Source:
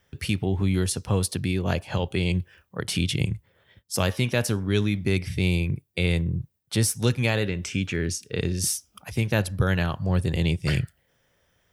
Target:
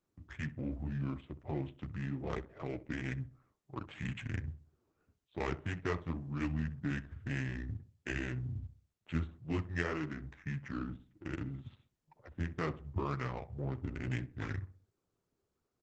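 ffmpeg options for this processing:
-filter_complex "[0:a]asetrate=32667,aresample=44100,highpass=f=140:p=1,flanger=delay=5.7:depth=8:regen=-3:speed=1.9:shape=triangular,aresample=8000,aresample=44100,adynamicsmooth=sensitivity=3:basefreq=700,asplit=2[s0][s1];[s1]adelay=64,lowpass=f=1300:p=1,volume=0.2,asplit=2[s2][s3];[s3]adelay=64,lowpass=f=1300:p=1,volume=0.4,asplit=2[s4][s5];[s5]adelay=64,lowpass=f=1300:p=1,volume=0.4,asplit=2[s6][s7];[s7]adelay=64,lowpass=f=1300:p=1,volume=0.4[s8];[s2][s4][s6][s8]amix=inputs=4:normalize=0[s9];[s0][s9]amix=inputs=2:normalize=0,volume=0.447" -ar 48000 -c:a libopus -b:a 12k

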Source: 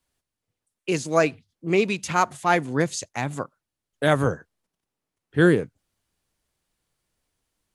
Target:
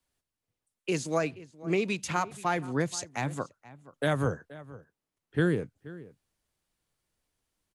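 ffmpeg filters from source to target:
-filter_complex "[0:a]acrossover=split=170[s0][s1];[s1]acompressor=threshold=0.1:ratio=6[s2];[s0][s2]amix=inputs=2:normalize=0,asplit=2[s3][s4];[s4]adelay=478.1,volume=0.126,highshelf=f=4000:g=-10.8[s5];[s3][s5]amix=inputs=2:normalize=0,volume=0.631"

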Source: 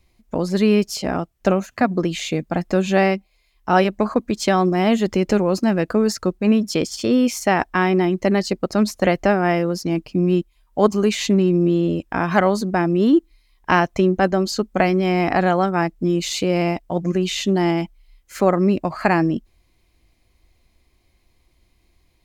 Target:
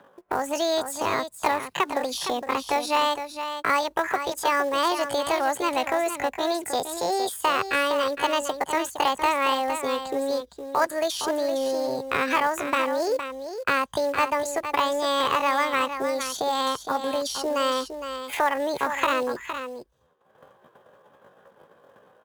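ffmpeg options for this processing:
-filter_complex "[0:a]agate=range=0.0224:threshold=0.00631:ratio=3:detection=peak,highpass=49,equalizer=f=200:w=2.7:g=-10,acrossover=split=170|1200[s0][s1][s2];[s1]acompressor=mode=upward:threshold=0.0794:ratio=2.5[s3];[s2]alimiter=limit=0.133:level=0:latency=1:release=316[s4];[s0][s3][s4]amix=inputs=3:normalize=0,acrossover=split=540|2700[s5][s6][s7];[s5]acompressor=threshold=0.0398:ratio=4[s8];[s6]acompressor=threshold=0.0891:ratio=4[s9];[s7]acompressor=threshold=0.02:ratio=4[s10];[s8][s9][s10]amix=inputs=3:normalize=0,acrusher=bits=5:mode=log:mix=0:aa=0.000001,asetrate=68011,aresample=44100,atempo=0.64842,aecho=1:1:462:0.355"

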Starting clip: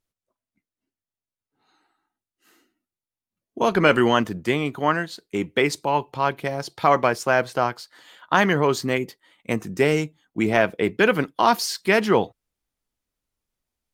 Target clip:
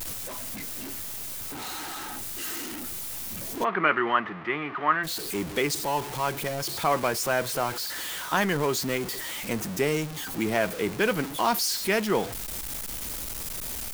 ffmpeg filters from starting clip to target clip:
-filter_complex "[0:a]aeval=exprs='val(0)+0.5*0.0668*sgn(val(0))':c=same,asplit=3[s0][s1][s2];[s0]afade=t=out:st=3.63:d=0.02[s3];[s1]highpass=230,equalizer=f=250:t=q:w=4:g=-7,equalizer=f=510:t=q:w=4:g=-9,equalizer=f=1200:t=q:w=4:g=9,equalizer=f=1900:t=q:w=4:g=6,lowpass=f=2700:w=0.5412,lowpass=f=2700:w=1.3066,afade=t=in:st=3.63:d=0.02,afade=t=out:st=5.03:d=0.02[s4];[s2]afade=t=in:st=5.03:d=0.02[s5];[s3][s4][s5]amix=inputs=3:normalize=0,crystalizer=i=1:c=0,volume=0.398"

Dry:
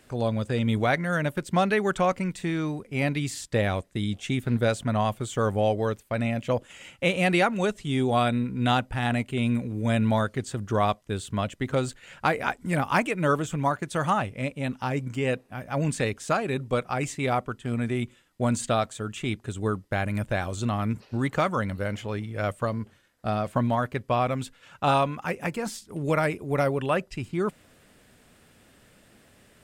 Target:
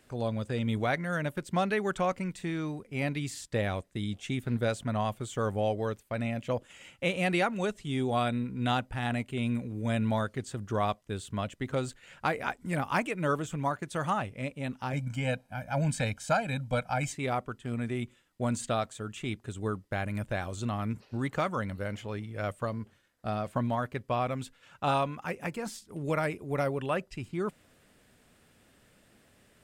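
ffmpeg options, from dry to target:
-filter_complex "[0:a]asettb=1/sr,asplit=3[s0][s1][s2];[s0]atrim=end=14.934[s3];[s1]atrim=start=14.93:end=17.13,asetpts=PTS-STARTPTS,afade=t=in:d=0.004:c=qsin,afade=t=out:st=2.196:d=0.004:c=qsin,aecho=1:1:1.3:0.98,atrim=end_sample=97020[s4];[s2]atrim=start=17.126[s5];[s3][s4]acrossfade=d=0.004:c1=hsin:c2=qsin[s6];[s6][s5]acrossfade=d=0.004:c1=qsin:c2=hsin,volume=0.531"

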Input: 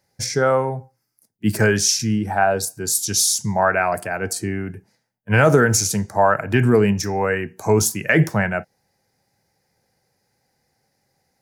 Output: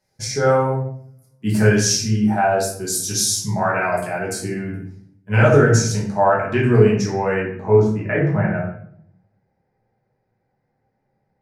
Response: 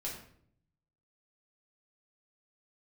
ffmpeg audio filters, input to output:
-filter_complex "[0:a]asetnsamples=n=441:p=0,asendcmd='5.36 lowpass f 6500;7.4 lowpass f 1500',lowpass=12000[s0];[1:a]atrim=start_sample=2205[s1];[s0][s1]afir=irnorm=-1:irlink=0,volume=0.891"

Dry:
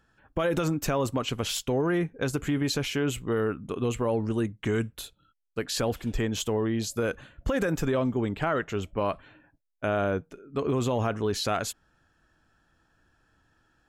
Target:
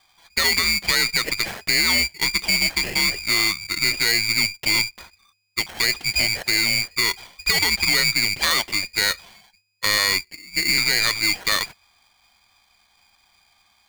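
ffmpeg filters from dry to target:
-filter_complex "[0:a]lowpass=f=3100:t=q:w=0.5098,lowpass=f=3100:t=q:w=0.6013,lowpass=f=3100:t=q:w=0.9,lowpass=f=3100:t=q:w=2.563,afreqshift=-3700,asettb=1/sr,asplit=3[s0][s1][s2];[s0]atrim=end=10.254[s3];[s1]atrim=start=10.25:end=10.78,asetpts=PTS-STARTPTS,afade=t=in:d=0.004:c=qsin,afade=t=out:st=0.526:d=0.004:c=qsin,asuperstop=centerf=2400:order=20:qfactor=3.7[s4];[s2]atrim=start=10.776[s5];[s3][s4]acrossfade=d=0.004:c1=hsin:c2=qsin[s6];[s6][s5]acrossfade=d=0.004:c1=qsin:c2=hsin,aeval=exprs='val(0)*sgn(sin(2*PI*1200*n/s))':c=same,volume=2.11"

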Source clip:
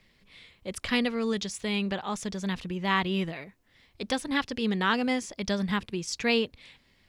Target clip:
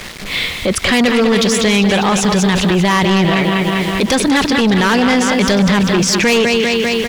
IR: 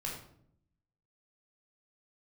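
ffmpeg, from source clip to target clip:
-filter_complex "[0:a]asplit=2[s0][s1];[s1]acompressor=threshold=0.0178:ratio=6,volume=0.891[s2];[s0][s2]amix=inputs=2:normalize=0,aecho=1:1:198|396|594|792|990|1188|1386:0.355|0.202|0.115|0.0657|0.0375|0.0213|0.0122,acrusher=bits=8:mix=0:aa=0.000001,highshelf=f=9700:g=-10.5,asoftclip=type=tanh:threshold=0.0531,lowshelf=f=190:g=-4,alimiter=level_in=56.2:limit=0.891:release=50:level=0:latency=1,volume=0.473"

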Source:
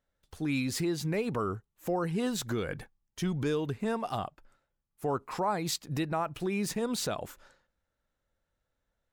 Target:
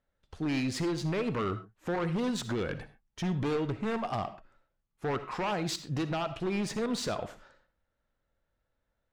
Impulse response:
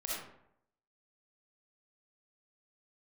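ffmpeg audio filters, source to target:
-filter_complex "[0:a]aeval=exprs='0.0473*(abs(mod(val(0)/0.0473+3,4)-2)-1)':c=same,adynamicsmooth=sensitivity=5:basefreq=4900,asplit=2[s0][s1];[1:a]atrim=start_sample=2205,atrim=end_sample=6174[s2];[s1][s2]afir=irnorm=-1:irlink=0,volume=0.299[s3];[s0][s3]amix=inputs=2:normalize=0"

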